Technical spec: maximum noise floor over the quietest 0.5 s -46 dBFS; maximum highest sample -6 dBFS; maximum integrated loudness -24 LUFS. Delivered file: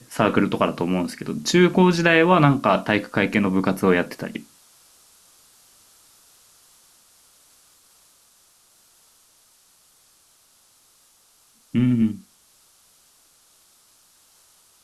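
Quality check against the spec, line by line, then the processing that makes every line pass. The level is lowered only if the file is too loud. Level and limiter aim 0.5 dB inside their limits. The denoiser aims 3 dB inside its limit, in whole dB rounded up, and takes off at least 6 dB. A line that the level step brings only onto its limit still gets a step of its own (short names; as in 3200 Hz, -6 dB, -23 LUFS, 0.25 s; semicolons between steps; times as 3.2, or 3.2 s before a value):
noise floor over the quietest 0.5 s -58 dBFS: OK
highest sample -4.0 dBFS: fail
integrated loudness -20.0 LUFS: fail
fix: gain -4.5 dB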